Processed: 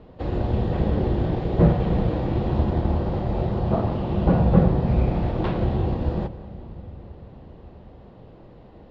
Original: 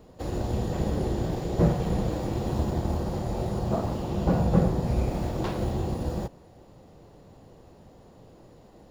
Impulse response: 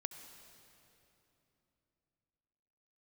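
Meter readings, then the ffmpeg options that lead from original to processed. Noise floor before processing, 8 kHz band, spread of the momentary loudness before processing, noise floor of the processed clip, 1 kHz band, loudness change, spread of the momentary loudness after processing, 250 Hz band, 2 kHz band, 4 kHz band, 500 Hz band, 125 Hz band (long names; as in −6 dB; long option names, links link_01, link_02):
−53 dBFS, below −15 dB, 7 LU, −47 dBFS, +4.0 dB, +5.0 dB, 15 LU, +5.0 dB, +4.0 dB, 0.0 dB, +4.0 dB, +5.5 dB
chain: -filter_complex "[0:a]lowpass=frequency=3600:width=0.5412,lowpass=frequency=3600:width=1.3066,asplit=2[link_01][link_02];[link_02]lowshelf=frequency=170:gain=6.5[link_03];[1:a]atrim=start_sample=2205,asetrate=30429,aresample=44100[link_04];[link_03][link_04]afir=irnorm=-1:irlink=0,volume=-4.5dB[link_05];[link_01][link_05]amix=inputs=2:normalize=0"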